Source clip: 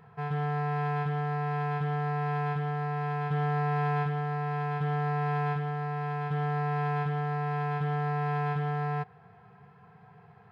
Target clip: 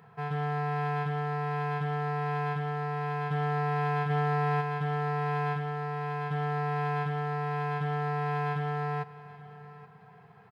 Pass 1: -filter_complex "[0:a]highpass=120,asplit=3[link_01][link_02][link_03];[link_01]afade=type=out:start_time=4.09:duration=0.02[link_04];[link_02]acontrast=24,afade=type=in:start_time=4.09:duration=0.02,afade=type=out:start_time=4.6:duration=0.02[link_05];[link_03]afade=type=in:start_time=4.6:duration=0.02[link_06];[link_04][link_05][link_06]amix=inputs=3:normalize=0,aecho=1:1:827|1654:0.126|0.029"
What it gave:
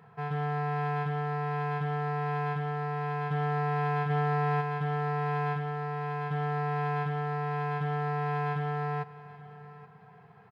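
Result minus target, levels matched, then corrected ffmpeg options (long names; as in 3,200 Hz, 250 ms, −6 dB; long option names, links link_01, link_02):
8,000 Hz band −3.5 dB
-filter_complex "[0:a]highpass=120,highshelf=frequency=4200:gain=5,asplit=3[link_01][link_02][link_03];[link_01]afade=type=out:start_time=4.09:duration=0.02[link_04];[link_02]acontrast=24,afade=type=in:start_time=4.09:duration=0.02,afade=type=out:start_time=4.6:duration=0.02[link_05];[link_03]afade=type=in:start_time=4.6:duration=0.02[link_06];[link_04][link_05][link_06]amix=inputs=3:normalize=0,aecho=1:1:827|1654:0.126|0.029"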